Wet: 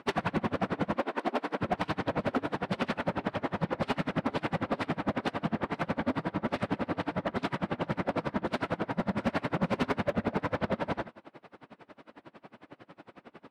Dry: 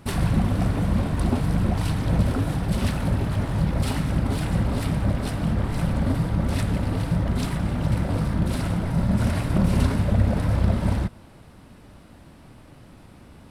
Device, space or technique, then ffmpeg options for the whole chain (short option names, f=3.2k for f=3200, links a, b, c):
helicopter radio: -filter_complex "[0:a]asettb=1/sr,asplit=3[a][b][c];[a]atrim=end=0.964[d];[b]atrim=start=0.96:end=1.61,asetpts=PTS-STARTPTS,afade=t=in:d=0.004:c=qsin,afade=t=out:st=0.646:d=0.004:c=qsin,highpass=f=260:w=0.5412,highpass=f=260:w=1.3066[e];[c]atrim=start=1.606[f];[d][e]acrossfade=d=0.004:c1=hsin:c2=qsin[g];[g][f]acrossfade=d=0.004:c1=qsin:c2=hsin,highpass=330,lowpass=2.7k,aeval=exprs='val(0)*pow(10,-29*(0.5-0.5*cos(2*PI*11*n/s))/20)':c=same,asoftclip=type=hard:threshold=-28.5dB,volume=7.5dB"